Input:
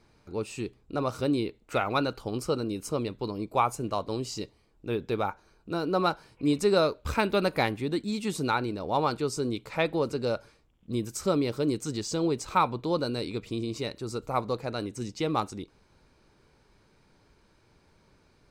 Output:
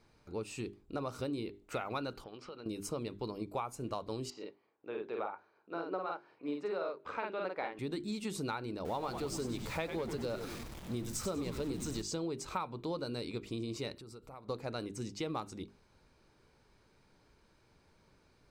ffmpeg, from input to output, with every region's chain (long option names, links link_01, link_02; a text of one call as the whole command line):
ffmpeg -i in.wav -filter_complex "[0:a]asettb=1/sr,asplit=3[link_01][link_02][link_03];[link_01]atrim=end=2.244[link_04];[link_02]atrim=start=2.24:end=2.66,asetpts=PTS-STARTPTS,afade=type=in:duration=0.004:curve=qsin,afade=type=out:start_time=0.416:duration=0.004:curve=qsin,lowpass=frequency=3200:width=0.5412,lowpass=frequency=3200:width=1.3066,aemphasis=mode=production:type=riaa,acompressor=threshold=-40dB:ratio=6:attack=3.2:release=140:knee=1:detection=peak[link_05];[link_03]atrim=start=2.656[link_06];[link_04][link_05]acrossfade=duration=0.004:curve1=hsin:curve2=qsin[link_07];[link_07][link_06]acrossfade=duration=0.004:curve1=qsin:curve2=hsin,asettb=1/sr,asplit=3[link_08][link_09][link_10];[link_08]atrim=end=4.304[link_11];[link_09]atrim=start=4.3:end=7.79,asetpts=PTS-STARTPTS,afade=type=in:duration=0.004:curve=qsin,afade=type=out:start_time=3.486:duration=0.004:curve=qsin,highpass=400,lowpass=2100,asplit=2[link_12][link_13];[link_13]adelay=48,volume=-2dB[link_14];[link_12][link_14]amix=inputs=2:normalize=0,atrim=end_sample=153909,tremolo=f=5.4:d=0.34[link_15];[link_10]atrim=start=7.786[link_16];[link_11][link_15]acrossfade=duration=0.004:curve1=hsin:curve2=qsin[link_17];[link_17][link_16]acrossfade=duration=0.004:curve1=qsin:curve2=hsin,asettb=1/sr,asplit=3[link_18][link_19][link_20];[link_18]atrim=end=8.854[link_21];[link_19]atrim=start=8.85:end=12.02,asetpts=PTS-STARTPTS,afade=type=in:duration=0.004:curve=qsin,afade=type=out:start_time=3.166:duration=0.004:curve=qsin,aeval=exprs='val(0)+0.5*0.0126*sgn(val(0))':channel_layout=same,asplit=8[link_22][link_23][link_24][link_25][link_26][link_27][link_28][link_29];[link_23]adelay=97,afreqshift=-110,volume=-9dB[link_30];[link_24]adelay=194,afreqshift=-220,volume=-13.9dB[link_31];[link_25]adelay=291,afreqshift=-330,volume=-18.8dB[link_32];[link_26]adelay=388,afreqshift=-440,volume=-23.6dB[link_33];[link_27]adelay=485,afreqshift=-550,volume=-28.5dB[link_34];[link_28]adelay=582,afreqshift=-660,volume=-33.4dB[link_35];[link_29]adelay=679,afreqshift=-770,volume=-38.3dB[link_36];[link_22][link_30][link_31][link_32][link_33][link_34][link_35][link_36]amix=inputs=8:normalize=0,atrim=end_sample=139797[link_37];[link_20]atrim=start=12.016[link_38];[link_21][link_37]acrossfade=duration=0.004:curve1=hsin:curve2=qsin[link_39];[link_39][link_38]acrossfade=duration=0.004:curve1=qsin:curve2=hsin,asettb=1/sr,asplit=3[link_40][link_41][link_42];[link_40]atrim=end=13.934[link_43];[link_41]atrim=start=13.93:end=14.49,asetpts=PTS-STARTPTS,afade=type=in:duration=0.004:curve=qsin,afade=type=out:start_time=0.556:duration=0.004:curve=qsin,equalizer=frequency=6600:width_type=o:width=0.25:gain=-8.5,acompressor=threshold=-44dB:ratio=5:attack=3.2:release=140:knee=1:detection=peak[link_44];[link_42]atrim=start=14.486[link_45];[link_43][link_44]acrossfade=duration=0.004:curve1=hsin:curve2=qsin[link_46];[link_46][link_45]acrossfade=duration=0.004:curve1=qsin:curve2=hsin,bandreject=frequency=50:width_type=h:width=6,bandreject=frequency=100:width_type=h:width=6,bandreject=frequency=150:width_type=h:width=6,bandreject=frequency=200:width_type=h:width=6,bandreject=frequency=250:width_type=h:width=6,bandreject=frequency=300:width_type=h:width=6,bandreject=frequency=350:width_type=h:width=6,bandreject=frequency=400:width_type=h:width=6,acompressor=threshold=-30dB:ratio=6,volume=-4dB" out.wav